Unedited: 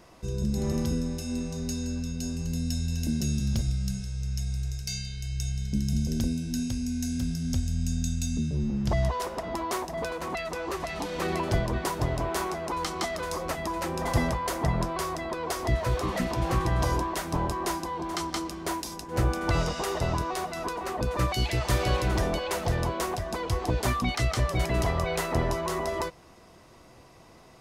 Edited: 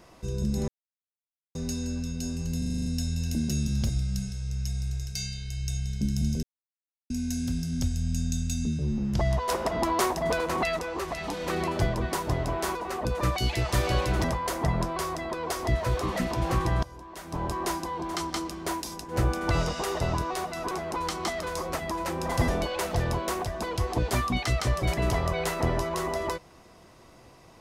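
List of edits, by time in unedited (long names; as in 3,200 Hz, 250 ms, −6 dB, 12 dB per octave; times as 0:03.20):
0:00.68–0:01.55: silence
0:02.58: stutter 0.04 s, 8 plays
0:06.15–0:06.82: silence
0:09.21–0:10.51: clip gain +5.5 dB
0:12.47–0:14.24: swap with 0:20.71–0:22.20
0:16.83–0:17.55: fade in quadratic, from −21 dB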